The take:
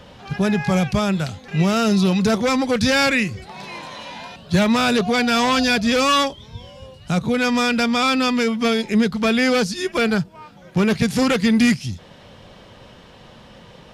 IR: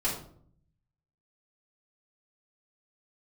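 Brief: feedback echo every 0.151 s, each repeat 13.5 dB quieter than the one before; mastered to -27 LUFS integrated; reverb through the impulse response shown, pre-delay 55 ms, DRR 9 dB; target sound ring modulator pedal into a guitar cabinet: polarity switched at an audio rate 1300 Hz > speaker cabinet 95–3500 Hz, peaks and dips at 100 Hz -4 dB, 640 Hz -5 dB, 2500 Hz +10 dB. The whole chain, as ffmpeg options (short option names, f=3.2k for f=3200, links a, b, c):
-filter_complex "[0:a]aecho=1:1:151|302:0.211|0.0444,asplit=2[a][b];[1:a]atrim=start_sample=2205,adelay=55[c];[b][c]afir=irnorm=-1:irlink=0,volume=-16.5dB[d];[a][d]amix=inputs=2:normalize=0,aeval=exprs='val(0)*sgn(sin(2*PI*1300*n/s))':c=same,highpass=95,equalizer=f=100:t=q:w=4:g=-4,equalizer=f=640:t=q:w=4:g=-5,equalizer=f=2.5k:t=q:w=4:g=10,lowpass=f=3.5k:w=0.5412,lowpass=f=3.5k:w=1.3066,volume=-11dB"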